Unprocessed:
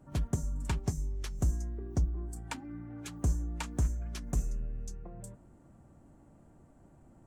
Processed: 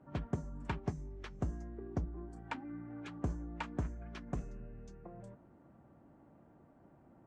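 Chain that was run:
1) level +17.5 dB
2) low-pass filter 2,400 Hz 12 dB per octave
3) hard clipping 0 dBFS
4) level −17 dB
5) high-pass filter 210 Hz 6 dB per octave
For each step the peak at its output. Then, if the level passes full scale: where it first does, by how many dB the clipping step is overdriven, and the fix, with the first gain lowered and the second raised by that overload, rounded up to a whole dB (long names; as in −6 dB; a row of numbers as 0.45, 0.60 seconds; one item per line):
−4.5, −4.5, −4.5, −21.5, −21.0 dBFS
no step passes full scale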